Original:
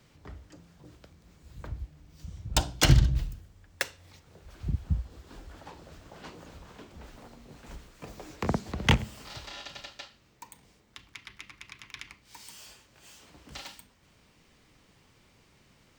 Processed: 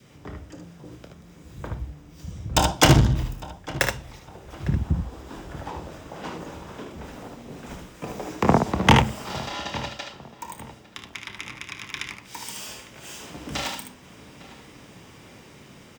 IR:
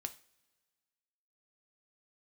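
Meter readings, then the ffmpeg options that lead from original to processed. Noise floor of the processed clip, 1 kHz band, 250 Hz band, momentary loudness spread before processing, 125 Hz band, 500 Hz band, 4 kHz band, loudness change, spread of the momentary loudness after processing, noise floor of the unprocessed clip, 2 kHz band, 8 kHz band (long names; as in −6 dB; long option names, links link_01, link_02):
−49 dBFS, +13.5 dB, +10.0 dB, 23 LU, +5.5 dB, +12.0 dB, +6.5 dB, +5.0 dB, 23 LU, −63 dBFS, +8.0 dB, +6.5 dB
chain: -filter_complex "[0:a]lowshelf=frequency=440:gain=9.5,bandreject=frequency=4300:width=8.3,asplit=2[link_01][link_02];[link_02]aecho=0:1:28|59|75:0.266|0.237|0.501[link_03];[link_01][link_03]amix=inputs=2:normalize=0,adynamicequalizer=threshold=0.00447:dfrequency=910:dqfactor=1.5:tfrequency=910:tqfactor=1.5:attack=5:release=100:ratio=0.375:range=3.5:mode=boostabove:tftype=bell,acontrast=69,highpass=frequency=280:poles=1,asplit=2[link_04][link_05];[link_05]adelay=854,lowpass=frequency=2400:poles=1,volume=-17.5dB,asplit=2[link_06][link_07];[link_07]adelay=854,lowpass=frequency=2400:poles=1,volume=0.35,asplit=2[link_08][link_09];[link_09]adelay=854,lowpass=frequency=2400:poles=1,volume=0.35[link_10];[link_06][link_08][link_10]amix=inputs=3:normalize=0[link_11];[link_04][link_11]amix=inputs=2:normalize=0,dynaudnorm=framelen=700:gausssize=9:maxgain=6dB"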